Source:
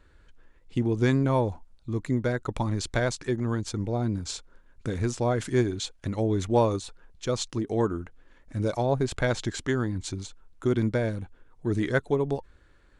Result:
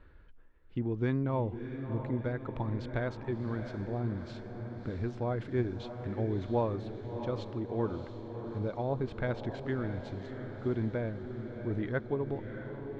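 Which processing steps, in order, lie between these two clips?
reverse; upward compressor, threshold -38 dBFS; reverse; distance through air 340 m; echo that smears into a reverb 661 ms, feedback 61%, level -8.5 dB; trim -7 dB

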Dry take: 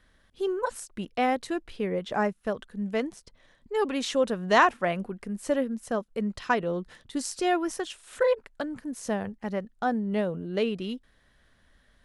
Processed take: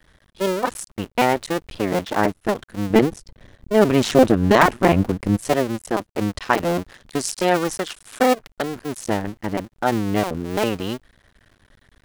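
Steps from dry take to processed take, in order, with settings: cycle switcher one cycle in 2, muted; 2.90–5.37 s: bass shelf 480 Hz +10 dB; loudness maximiser +10.5 dB; trim -1 dB

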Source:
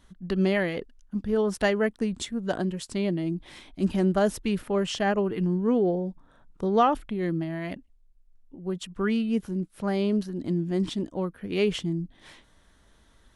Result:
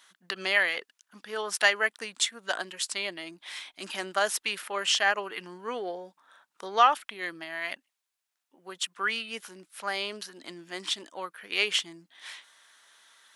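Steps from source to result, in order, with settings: high-pass 1.3 kHz 12 dB/octave; trim +8.5 dB

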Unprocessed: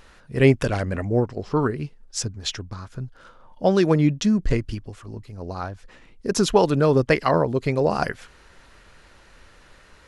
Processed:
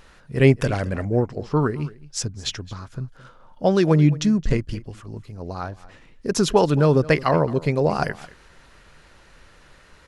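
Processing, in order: peaking EQ 150 Hz +5 dB 0.27 oct; delay 218 ms -19.5 dB

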